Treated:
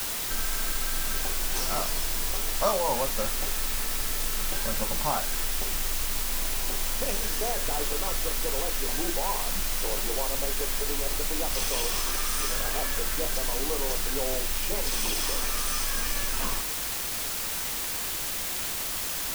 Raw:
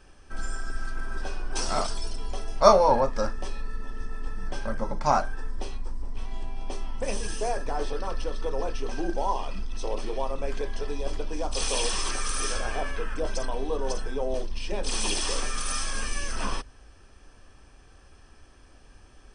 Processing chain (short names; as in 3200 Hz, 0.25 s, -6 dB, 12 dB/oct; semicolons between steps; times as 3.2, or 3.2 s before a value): compressor 2.5:1, threshold -34 dBFS, peak gain reduction 15.5 dB; requantised 6-bit, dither triangular; gain +4.5 dB